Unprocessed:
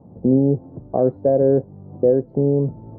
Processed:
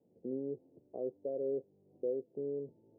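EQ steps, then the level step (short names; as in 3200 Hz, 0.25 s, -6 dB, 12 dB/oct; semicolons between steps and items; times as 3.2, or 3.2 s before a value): ladder low-pass 510 Hz, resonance 45%; differentiator; +9.5 dB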